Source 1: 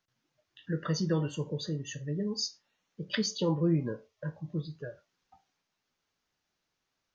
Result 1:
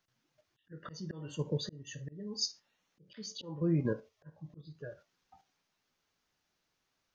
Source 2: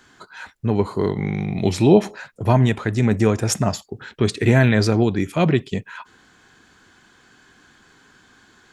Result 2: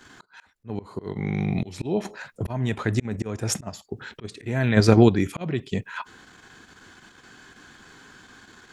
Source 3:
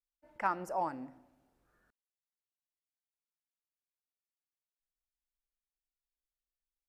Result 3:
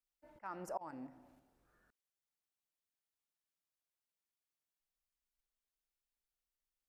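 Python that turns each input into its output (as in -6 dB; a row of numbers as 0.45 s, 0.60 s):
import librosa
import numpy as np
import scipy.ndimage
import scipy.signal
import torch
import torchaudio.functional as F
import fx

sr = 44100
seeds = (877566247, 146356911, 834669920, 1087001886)

p1 = fx.auto_swell(x, sr, attack_ms=482.0)
p2 = fx.level_steps(p1, sr, step_db=18)
p3 = p1 + F.gain(torch.from_numpy(p2), 2.0).numpy()
y = F.gain(torch.from_numpy(p3), -2.5).numpy()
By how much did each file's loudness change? -5.0 LU, -5.0 LU, -11.0 LU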